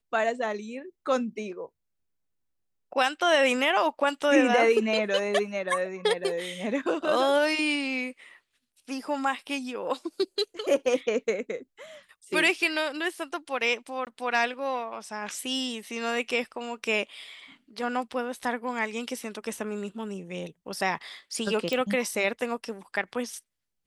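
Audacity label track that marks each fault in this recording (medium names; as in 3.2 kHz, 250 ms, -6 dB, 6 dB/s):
14.050000	14.070000	dropout 18 ms
21.730000	21.730000	pop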